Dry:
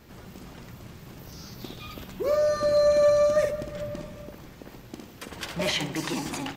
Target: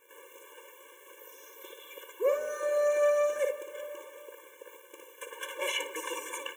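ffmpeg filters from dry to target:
ffmpeg -i in.wav -af "tiltshelf=frequency=1100:gain=-4.5,acontrast=41,lowshelf=frequency=360:width_type=q:width=3:gain=-12,acrusher=bits=8:dc=4:mix=0:aa=0.000001,asuperstop=centerf=4600:order=4:qfactor=1.3,afftfilt=real='re*eq(mod(floor(b*sr/1024/300),2),1)':imag='im*eq(mod(floor(b*sr/1024/300),2),1)':win_size=1024:overlap=0.75,volume=-6.5dB" out.wav

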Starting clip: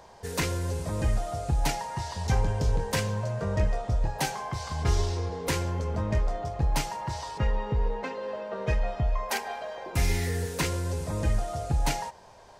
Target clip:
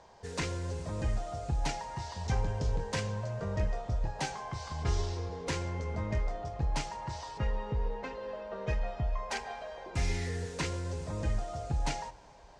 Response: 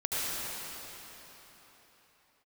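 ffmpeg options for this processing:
-filter_complex "[0:a]lowpass=frequency=7800:width=0.5412,lowpass=frequency=7800:width=1.3066,asettb=1/sr,asplit=3[link_01][link_02][link_03];[link_01]atrim=end=5.574[link_04];[link_02]atrim=start=5.57:end=6.31,asetpts=PTS-STARTPTS,afade=type=in:duration=0.004:curve=qsin,afade=type=out:start_time=0.736:duration=0.004:curve=qsin,aeval=exprs='val(0)+0.00631*sin(2*PI*2100*n/s)':channel_layout=same[link_05];[link_03]atrim=start=6.306[link_06];[link_04][link_05]acrossfade=duration=0.004:curve1=hsin:curve2=qsin[link_07];[link_07][link_06]acrossfade=duration=0.004:curve1=qsin:curve2=hsin,asplit=2[link_08][link_09];[1:a]atrim=start_sample=2205[link_10];[link_09][link_10]afir=irnorm=-1:irlink=0,volume=-30dB[link_11];[link_08][link_11]amix=inputs=2:normalize=0,volume=-6dB"

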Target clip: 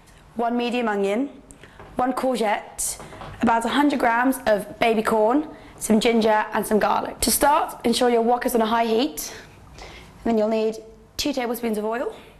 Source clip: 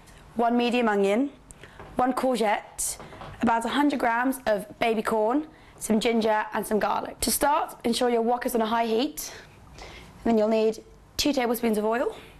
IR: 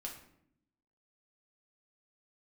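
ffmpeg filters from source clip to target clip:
-filter_complex "[0:a]dynaudnorm=framelen=270:gausssize=21:maxgain=6dB,asplit=2[link_01][link_02];[1:a]atrim=start_sample=2205,asetrate=25137,aresample=44100,adelay=19[link_03];[link_02][link_03]afir=irnorm=-1:irlink=0,volume=-17.5dB[link_04];[link_01][link_04]amix=inputs=2:normalize=0"

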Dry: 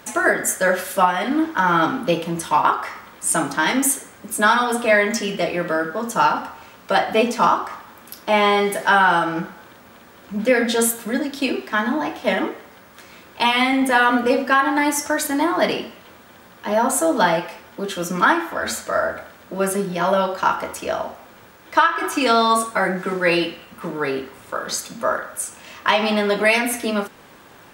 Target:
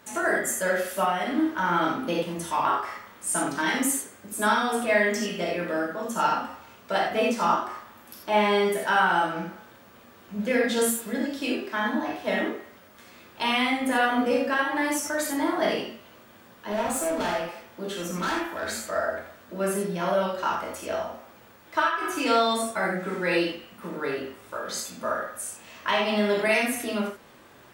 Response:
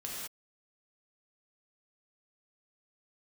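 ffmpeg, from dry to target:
-filter_complex "[0:a]asettb=1/sr,asplit=3[link_01][link_02][link_03];[link_01]atrim=end=16.724[link_04];[link_02]atrim=start=16.72:end=18.84,asetpts=PTS-STARTPTS,afade=type=in:duration=0.004:curve=qsin,afade=type=out:start_time=2.116:duration=0.004:curve=qsin,asoftclip=type=hard:threshold=-18dB[link_05];[link_03]atrim=start=18.836[link_06];[link_04][link_05]acrossfade=duration=0.004:curve1=hsin:curve2=qsin[link_07];[link_07][link_06]acrossfade=duration=0.004:curve1=qsin:curve2=hsin[link_08];[1:a]atrim=start_sample=2205,atrim=end_sample=4410[link_09];[link_08][link_09]afir=irnorm=-1:irlink=0,volume=-5dB"

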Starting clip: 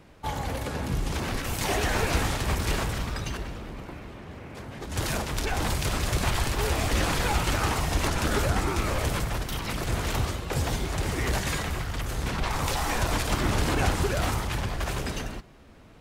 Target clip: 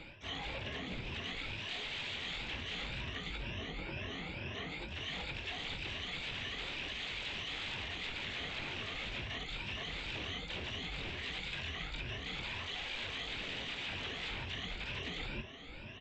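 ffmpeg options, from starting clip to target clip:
ffmpeg -i in.wav -filter_complex "[0:a]afftfilt=real='re*pow(10,24/40*sin(2*PI*(1.4*log(max(b,1)*sr/1024/100)/log(2)-(2.1)*(pts-256)/sr)))':imag='im*pow(10,24/40*sin(2*PI*(1.4*log(max(b,1)*sr/1024/100)/log(2)-(2.1)*(pts-256)/sr)))':win_size=1024:overlap=0.75,aresample=8000,aeval=exprs='0.0841*(abs(mod(val(0)/0.0841+3,4)-2)-1)':channel_layout=same,aresample=44100,asplit=4[link_01][link_02][link_03][link_04];[link_02]asetrate=52444,aresample=44100,atempo=0.840896,volume=-11dB[link_05];[link_03]asetrate=55563,aresample=44100,atempo=0.793701,volume=-12dB[link_06];[link_04]asetrate=88200,aresample=44100,atempo=0.5,volume=-17dB[link_07];[link_01][link_05][link_06][link_07]amix=inputs=4:normalize=0,highshelf=frequency=1800:width_type=q:width=1.5:gain=9,asplit=2[link_08][link_09];[link_09]adelay=22,volume=-12dB[link_10];[link_08][link_10]amix=inputs=2:normalize=0,areverse,acompressor=threshold=-33dB:ratio=16,areverse,volume=-5dB" out.wav

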